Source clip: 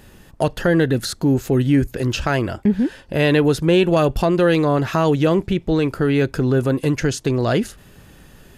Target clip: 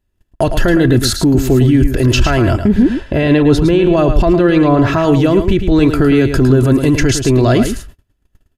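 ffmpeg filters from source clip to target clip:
-filter_complex "[0:a]asettb=1/sr,asplit=3[a][b][c];[a]atrim=end=2.824[d];[b]atrim=start=2.82:end=5.03,asetpts=PTS-STARTPTS,afade=t=in:d=0.004:c=qsin,afade=t=out:st=2.206:d=0.004:c=qsin,aemphasis=mode=reproduction:type=50kf[e];[c]atrim=start=5.026[f];[d][e]acrossfade=d=0.004:c1=hsin:c2=qsin[g];[g][f]acrossfade=d=0.004:c1=qsin:c2=hsin,agate=range=-40dB:threshold=-39dB:ratio=16:detection=peak,lowshelf=f=130:g=11,aecho=1:1:3:0.42,alimiter=limit=-13dB:level=0:latency=1:release=20,aecho=1:1:109:0.398,volume=9dB"

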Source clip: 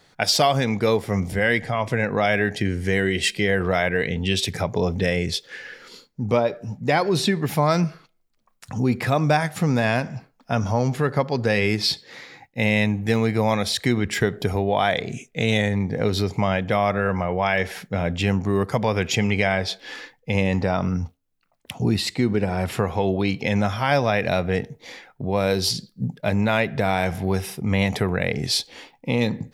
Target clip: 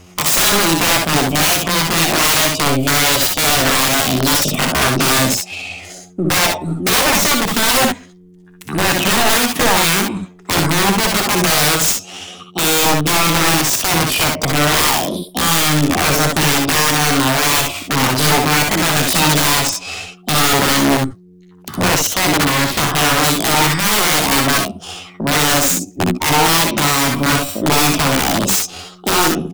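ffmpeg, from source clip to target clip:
-filter_complex "[0:a]highshelf=f=11k:g=-2,acrossover=split=120|7000[a][b][c];[a]aeval=exprs='clip(val(0),-1,0.01)':c=same[d];[d][b][c]amix=inputs=3:normalize=0,aeval=exprs='val(0)+0.00282*(sin(2*PI*60*n/s)+sin(2*PI*2*60*n/s)/2+sin(2*PI*3*60*n/s)/3+sin(2*PI*4*60*n/s)/4+sin(2*PI*5*60*n/s)/5)':c=same,asetrate=66075,aresample=44100,atempo=0.66742,aeval=exprs='(mod(8.41*val(0)+1,2)-1)/8.41':c=same,aecho=1:1:61|72:0.596|0.398,volume=9dB"

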